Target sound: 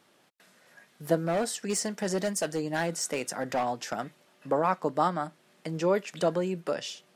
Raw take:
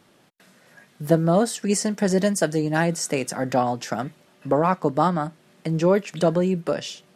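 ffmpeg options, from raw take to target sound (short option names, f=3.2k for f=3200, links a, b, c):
-filter_complex "[0:a]lowshelf=f=240:g=-11,asettb=1/sr,asplit=3[a][b][c];[a]atrim=end=1.254[d];[b]atrim=start=1.25:end=3.93,asetpts=PTS-STARTPTS,afade=t=in:d=0.004:c=qsin,afade=t=out:st=2.676:d=0.004:c=qsin,asoftclip=type=hard:threshold=-19dB[e];[c]atrim=start=3.926[f];[d][e]acrossfade=d=0.004:c1=hsin:c2=qsin[g];[g][f]acrossfade=d=0.004:c1=qsin:c2=hsin,volume=-4dB"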